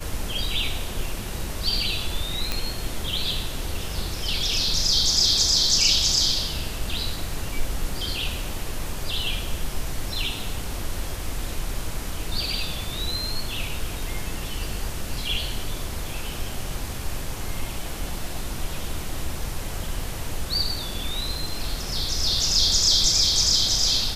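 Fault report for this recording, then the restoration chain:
2.52 pop -9 dBFS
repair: de-click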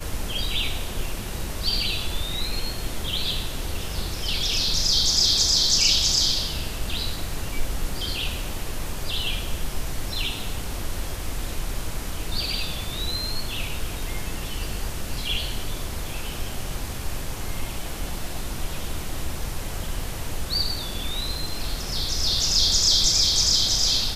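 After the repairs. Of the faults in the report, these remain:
none

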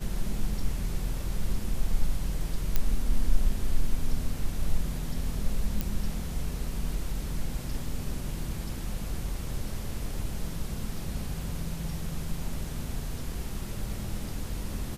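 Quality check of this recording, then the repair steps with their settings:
2.76 pop -11 dBFS
5.81 pop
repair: de-click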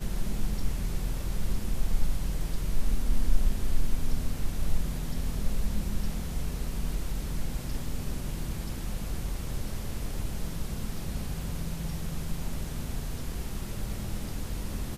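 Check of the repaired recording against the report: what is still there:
none

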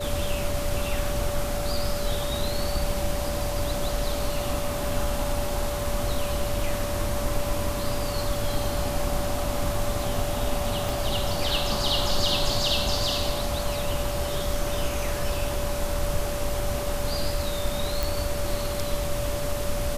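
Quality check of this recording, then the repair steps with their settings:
tone 580 Hz -31 dBFS
10.89 pop
18.03 pop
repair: de-click; notch 580 Hz, Q 30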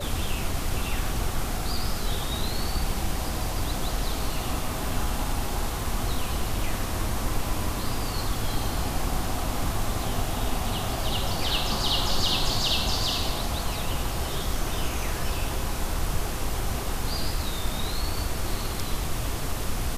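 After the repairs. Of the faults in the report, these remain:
10.89 pop

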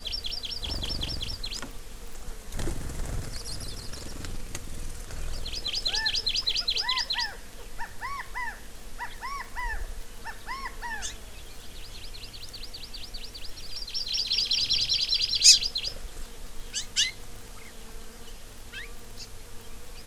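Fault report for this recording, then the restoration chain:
crackle 21/s -35 dBFS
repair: de-click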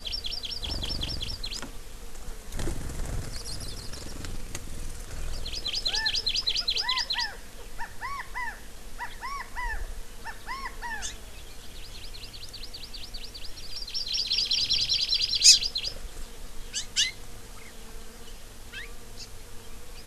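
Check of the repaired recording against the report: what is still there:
none

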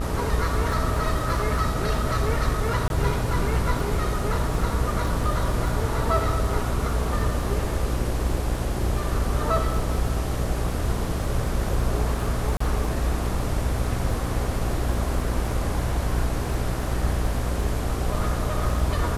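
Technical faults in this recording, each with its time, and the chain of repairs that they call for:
buzz 60 Hz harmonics 32 -28 dBFS
crackle 22/s -31 dBFS
2.88–2.9 gap 21 ms
12.57–12.6 gap 34 ms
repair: de-click; de-hum 60 Hz, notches 32; interpolate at 2.88, 21 ms; interpolate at 12.57, 34 ms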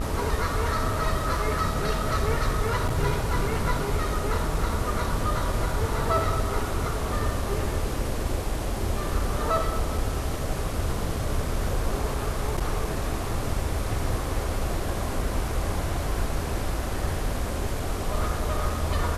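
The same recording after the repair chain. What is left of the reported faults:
none

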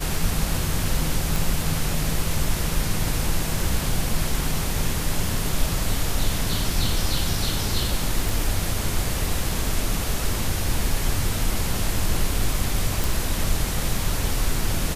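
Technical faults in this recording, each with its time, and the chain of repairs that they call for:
1.36 pop
8.29 pop
13.04 pop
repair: de-click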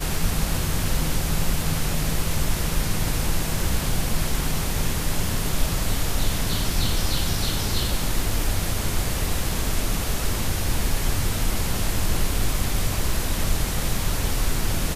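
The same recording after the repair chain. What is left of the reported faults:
none

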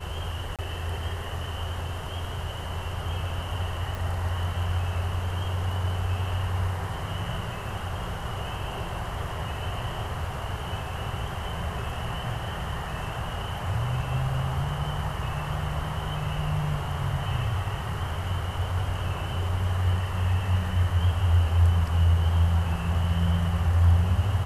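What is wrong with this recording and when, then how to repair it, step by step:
0.56–0.59 gap 27 ms
3.95 pop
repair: de-click; interpolate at 0.56, 27 ms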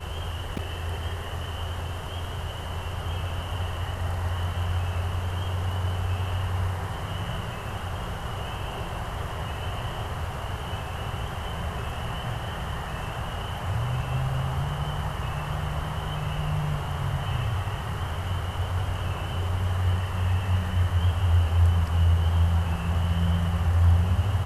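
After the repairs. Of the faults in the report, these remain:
none

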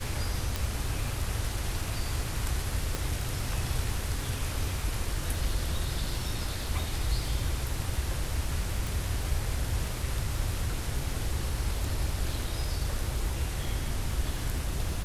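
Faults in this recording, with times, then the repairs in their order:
crackle 56/s -37 dBFS
0.56 pop
2.95 pop -15 dBFS
8.87 pop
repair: de-click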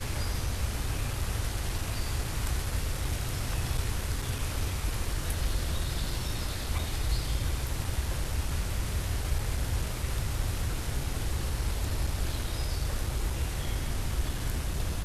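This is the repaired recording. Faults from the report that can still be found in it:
0.56 pop

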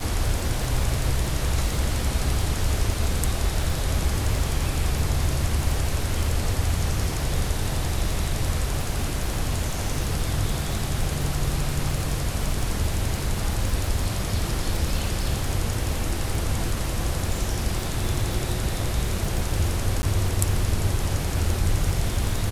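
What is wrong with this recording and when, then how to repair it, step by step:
crackle 59/s -27 dBFS
20.02–20.03 gap 10 ms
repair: de-click; interpolate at 20.02, 10 ms

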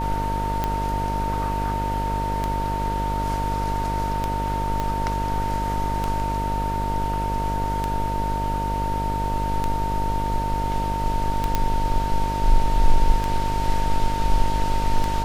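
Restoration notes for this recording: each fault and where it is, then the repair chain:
buzz 50 Hz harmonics 15 -27 dBFS
tick 33 1/3 rpm -10 dBFS
tone 910 Hz -25 dBFS
4.8 pop -13 dBFS
11.55 pop -7 dBFS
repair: de-click; de-hum 50 Hz, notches 15; notch 910 Hz, Q 30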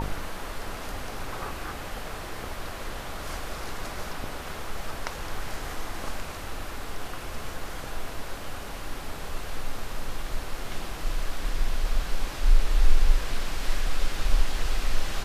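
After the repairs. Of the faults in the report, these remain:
4.8 pop

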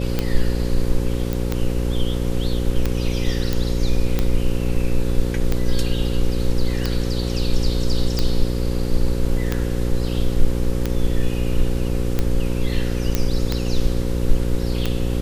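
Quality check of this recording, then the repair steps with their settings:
buzz 60 Hz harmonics 9 -23 dBFS
tick 45 rpm -7 dBFS
1.33 pop
3.53 pop
13.15 pop -5 dBFS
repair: de-click; de-hum 60 Hz, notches 9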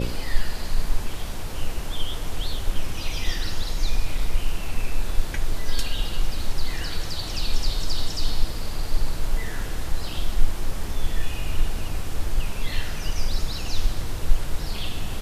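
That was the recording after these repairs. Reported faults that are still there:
none

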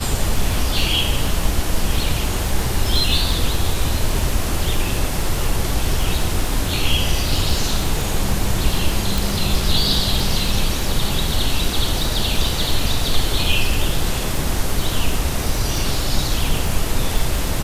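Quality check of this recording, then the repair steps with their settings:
crackle 28/s -20 dBFS
9.18 pop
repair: de-click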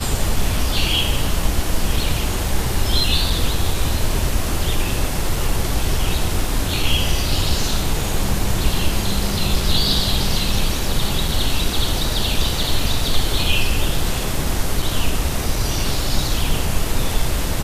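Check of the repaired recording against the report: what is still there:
9.18 pop

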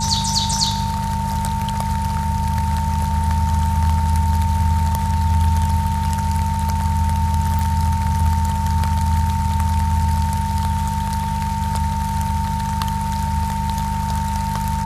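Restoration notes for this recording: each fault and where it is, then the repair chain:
hum 50 Hz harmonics 4 -25 dBFS
tone 900 Hz -23 dBFS
7.59 pop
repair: de-click; de-hum 50 Hz, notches 4; notch 900 Hz, Q 30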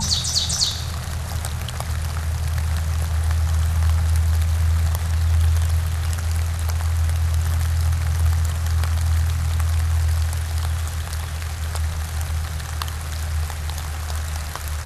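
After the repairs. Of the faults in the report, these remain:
none

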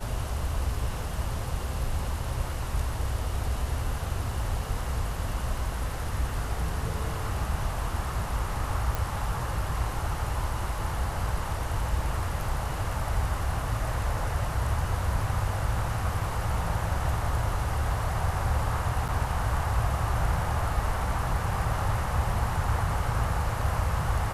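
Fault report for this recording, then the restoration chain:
8.95 pop
19.08–19.09 gap 7.3 ms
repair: de-click; interpolate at 19.08, 7.3 ms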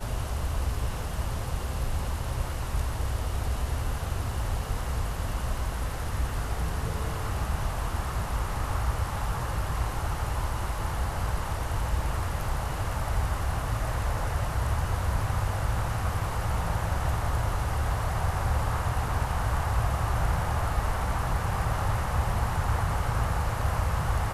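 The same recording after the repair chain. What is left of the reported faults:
none

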